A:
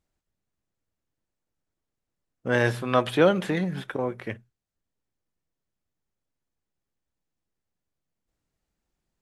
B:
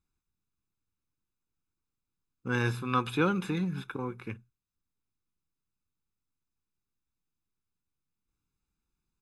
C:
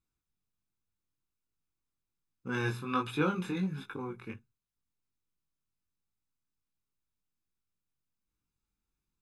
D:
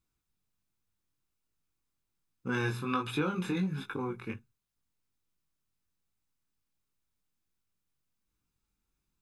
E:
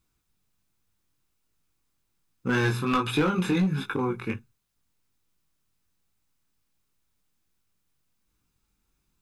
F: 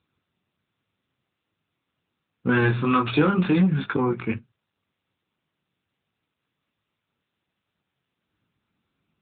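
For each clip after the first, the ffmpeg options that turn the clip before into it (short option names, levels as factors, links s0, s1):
-af "aecho=1:1:0.8:0.99,volume=0.398"
-af "flanger=delay=19:depth=3.7:speed=1.3"
-af "acompressor=threshold=0.0282:ratio=6,volume=1.58"
-af "aeval=exprs='clip(val(0),-1,0.0473)':c=same,volume=2.51"
-af "volume=1.68" -ar 8000 -c:a libopencore_amrnb -b:a 10200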